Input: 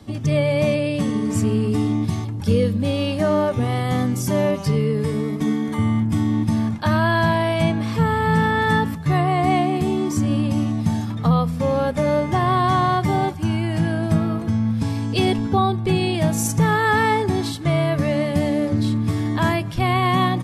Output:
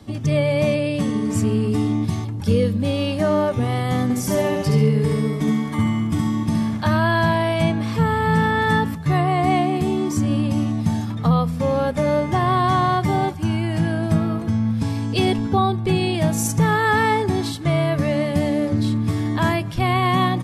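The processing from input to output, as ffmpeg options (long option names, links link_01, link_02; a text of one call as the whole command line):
ffmpeg -i in.wav -filter_complex "[0:a]asettb=1/sr,asplit=3[link_01][link_02][link_03];[link_01]atrim=end=4.034[link_04];[link_02]atrim=start=4.03:end=6.88,asetpts=PTS-STARTPTS,afade=type=in:duration=0.004:curve=qsin,afade=type=out:start_time=2.846:duration=0.004:curve=qsin,aecho=1:1:69|138|207|276|345:0.668|0.274|0.112|0.0461|0.0189,atrim=end_sample=125685[link_05];[link_03]atrim=start=6.876[link_06];[link_04][link_05]acrossfade=duration=0.004:curve1=hsin:curve2=qsin[link_07];[link_07][link_06]acrossfade=duration=0.004:curve1=qsin:curve2=hsin" out.wav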